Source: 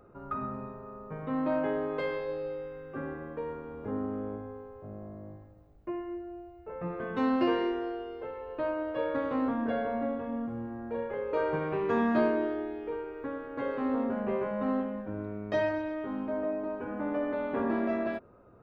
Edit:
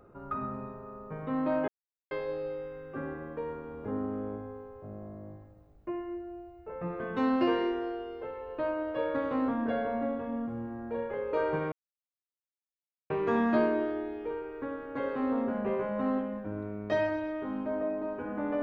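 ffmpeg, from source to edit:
ffmpeg -i in.wav -filter_complex "[0:a]asplit=4[link_01][link_02][link_03][link_04];[link_01]atrim=end=1.68,asetpts=PTS-STARTPTS,afade=type=out:start_time=1.676:duration=0.004:curve=hsin[link_05];[link_02]atrim=start=1.68:end=2.11,asetpts=PTS-STARTPTS,volume=0[link_06];[link_03]atrim=start=2.11:end=11.72,asetpts=PTS-STARTPTS,afade=type=in:duration=0.004:curve=hsin,afade=type=out:start_time=9.606:duration=0.004:curve=hsin,apad=pad_dur=1.38[link_07];[link_04]atrim=start=11.72,asetpts=PTS-STARTPTS,afade=type=in:duration=0.004:curve=hsin[link_08];[link_05][link_06][link_07][link_08]concat=n=4:v=0:a=1" out.wav

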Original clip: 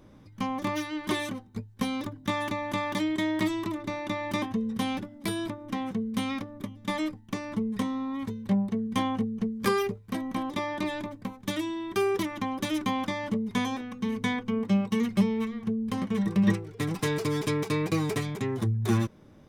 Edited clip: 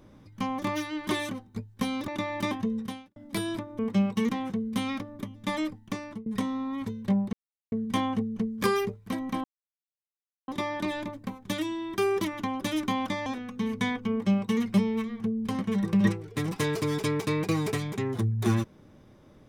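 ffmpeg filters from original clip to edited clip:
ffmpeg -i in.wav -filter_complex "[0:a]asplit=9[link_01][link_02][link_03][link_04][link_05][link_06][link_07][link_08][link_09];[link_01]atrim=end=2.082[link_10];[link_02]atrim=start=3.988:end=5.07,asetpts=PTS-STARTPTS,afade=type=out:start_time=0.692:duration=0.39:curve=qua[link_11];[link_03]atrim=start=5.07:end=5.702,asetpts=PTS-STARTPTS,afade=type=in:duration=0.004:curve=hsin[link_12];[link_04]atrim=start=14.538:end=15.042[link_13];[link_05]atrim=start=5.698:end=7.67,asetpts=PTS-STARTPTS,afade=type=out:start_time=1.532:duration=0.44:curve=qsin:silence=0.0668344[link_14];[link_06]atrim=start=7.67:end=8.74,asetpts=PTS-STARTPTS,afade=type=in:duration=0.004:curve=hsin:silence=0.0668344,afade=type=out:start_time=1.066:duration=0.004:curve=hsin,apad=pad_dur=0.39[link_15];[link_07]atrim=start=8.74:end=10.46,asetpts=PTS-STARTPTS,afade=type=in:duration=0.004:curve=hsin,afade=type=out:start_time=1.716:duration=0.004:curve=hsin,apad=pad_dur=1.04[link_16];[link_08]atrim=start=10.46:end=13.242,asetpts=PTS-STARTPTS,afade=type=in:duration=0.004:curve=hsin[link_17];[link_09]atrim=start=13.688[link_18];[link_11][link_12]concat=n=2:v=0:a=1[link_19];[link_10][link_19]acrossfade=duration=0.004:curve1=hsin:curve2=hsin[link_20];[link_20][link_13]acrossfade=duration=0.004:curve1=hsin:curve2=hsin[link_21];[link_14][link_15][link_16][link_17]concat=n=4:v=0:a=1[link_22];[link_21][link_22]acrossfade=duration=0.004:curve1=hsin:curve2=hsin[link_23];[link_23][link_18]acrossfade=duration=0.004:curve1=hsin:curve2=hsin" out.wav

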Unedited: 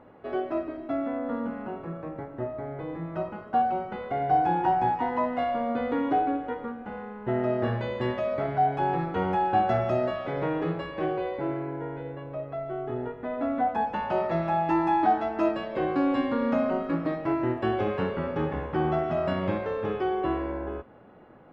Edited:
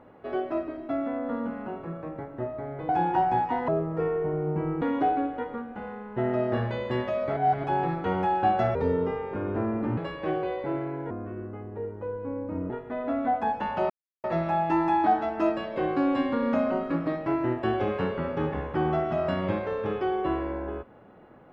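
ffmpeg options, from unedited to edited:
ffmpeg -i in.wav -filter_complex "[0:a]asplit=11[link_01][link_02][link_03][link_04][link_05][link_06][link_07][link_08][link_09][link_10][link_11];[link_01]atrim=end=2.892[link_12];[link_02]atrim=start=4.388:end=5.184[link_13];[link_03]atrim=start=5.18:end=5.92,asetpts=PTS-STARTPTS,asetrate=28665,aresample=44100,atrim=end_sample=50206,asetpts=PTS-STARTPTS[link_14];[link_04]atrim=start=5.916:end=8.472[link_15];[link_05]atrim=start=8.468:end=8.742,asetpts=PTS-STARTPTS,areverse[link_16];[link_06]atrim=start=8.738:end=9.854[link_17];[link_07]atrim=start=9.85:end=10.72,asetpts=PTS-STARTPTS,asetrate=31311,aresample=44100,atrim=end_sample=54038,asetpts=PTS-STARTPTS[link_18];[link_08]atrim=start=10.716:end=11.854[link_19];[link_09]atrim=start=11.85:end=13.03,asetpts=PTS-STARTPTS,asetrate=32634,aresample=44100[link_20];[link_10]atrim=start=13.026:end=14.23,asetpts=PTS-STARTPTS,afade=type=out:start_time=1.2:duration=0.004:curve=hsin,apad=pad_dur=0.34[link_21];[link_11]atrim=start=14.23,asetpts=PTS-STARTPTS,afade=type=in:duration=0.004:curve=hsin[link_22];[link_12][link_13]acrossfade=duration=0.004:curve1=hsin:curve2=hsin[link_23];[link_23][link_14]acrossfade=duration=0.004:curve1=hsin:curve2=hsin[link_24];[link_24][link_15]acrossfade=duration=0.004:curve1=hsin:curve2=hsin[link_25];[link_25][link_16]acrossfade=duration=0.004:curve1=hsin:curve2=hsin[link_26];[link_26][link_17]acrossfade=duration=0.004:curve1=hsin:curve2=hsin[link_27];[link_27][link_18]acrossfade=duration=0.004:curve1=hsin:curve2=hsin[link_28];[link_28][link_19]acrossfade=duration=0.004:curve1=hsin:curve2=hsin[link_29];[link_29][link_20]acrossfade=duration=0.004:curve1=hsin:curve2=hsin[link_30];[link_21][link_22]concat=n=2:v=0:a=1[link_31];[link_30][link_31]acrossfade=duration=0.004:curve1=hsin:curve2=hsin" out.wav

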